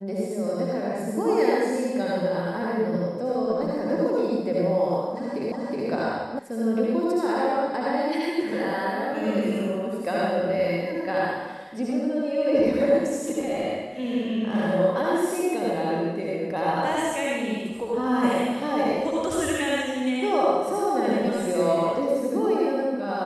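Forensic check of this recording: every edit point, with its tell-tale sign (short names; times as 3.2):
5.52 repeat of the last 0.37 s
6.39 sound cut off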